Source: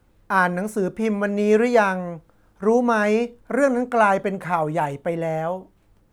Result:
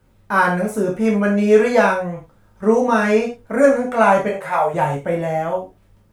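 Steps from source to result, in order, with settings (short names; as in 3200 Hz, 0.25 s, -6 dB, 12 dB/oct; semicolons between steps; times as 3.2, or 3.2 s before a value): 4.28–4.74 resonant low shelf 370 Hz -11 dB, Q 1.5; non-linear reverb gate 0.13 s falling, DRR -3 dB; gain -1 dB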